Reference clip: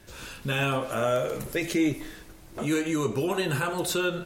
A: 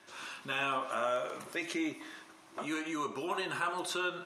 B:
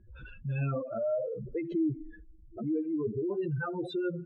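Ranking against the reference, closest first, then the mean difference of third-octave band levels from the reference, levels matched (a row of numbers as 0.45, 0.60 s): A, B; 5.5, 18.5 dB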